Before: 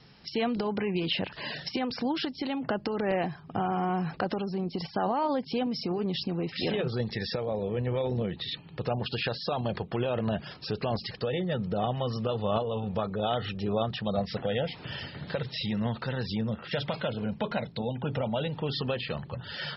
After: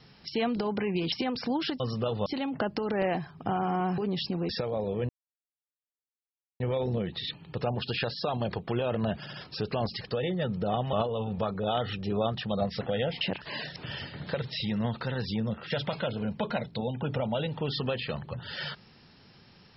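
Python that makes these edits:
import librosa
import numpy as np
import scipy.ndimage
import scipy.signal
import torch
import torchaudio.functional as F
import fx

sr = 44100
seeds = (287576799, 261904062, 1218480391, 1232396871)

y = fx.edit(x, sr, fx.move(start_s=1.12, length_s=0.55, to_s=14.77),
    fx.cut(start_s=4.07, length_s=1.88),
    fx.cut(start_s=6.46, length_s=0.78),
    fx.insert_silence(at_s=7.84, length_s=1.51),
    fx.stutter(start_s=10.43, slice_s=0.07, count=3),
    fx.move(start_s=12.03, length_s=0.46, to_s=2.35), tone=tone)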